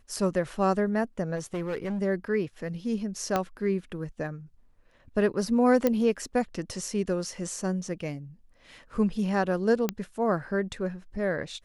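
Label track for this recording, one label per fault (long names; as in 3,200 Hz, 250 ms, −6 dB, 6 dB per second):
1.350000	2.020000	clipping −27.5 dBFS
3.360000	3.360000	click −12 dBFS
5.870000	5.870000	click −11 dBFS
9.890000	9.890000	click −12 dBFS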